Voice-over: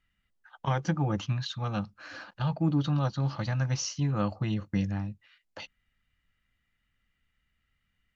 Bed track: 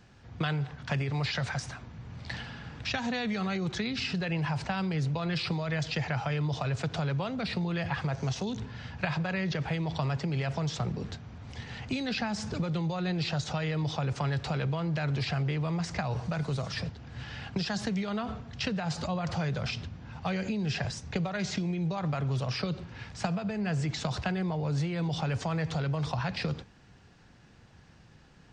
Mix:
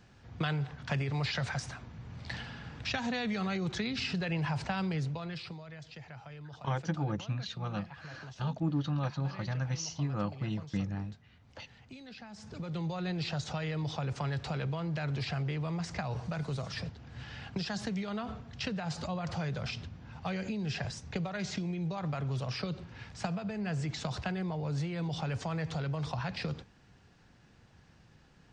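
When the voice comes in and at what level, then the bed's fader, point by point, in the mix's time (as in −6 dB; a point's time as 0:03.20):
6.00 s, −5.0 dB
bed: 0:04.91 −2 dB
0:05.76 −17 dB
0:12.27 −17 dB
0:12.82 −4 dB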